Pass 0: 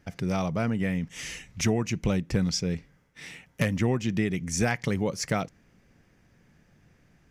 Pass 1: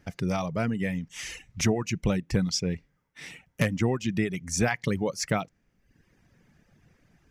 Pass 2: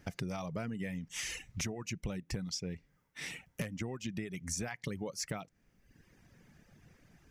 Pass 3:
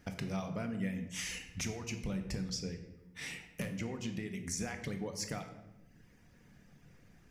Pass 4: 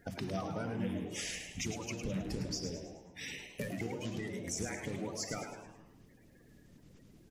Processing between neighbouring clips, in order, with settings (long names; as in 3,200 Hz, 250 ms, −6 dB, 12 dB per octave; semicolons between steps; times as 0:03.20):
reverb reduction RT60 0.86 s; level +1 dB
high-shelf EQ 6,100 Hz +4.5 dB; downward compressor 12 to 1, threshold −35 dBFS, peak gain reduction 17 dB
convolution reverb RT60 1.0 s, pre-delay 4 ms, DRR 5 dB; level −1.5 dB
spectral magnitudes quantised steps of 30 dB; echo with shifted repeats 106 ms, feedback 45%, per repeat +120 Hz, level −7.5 dB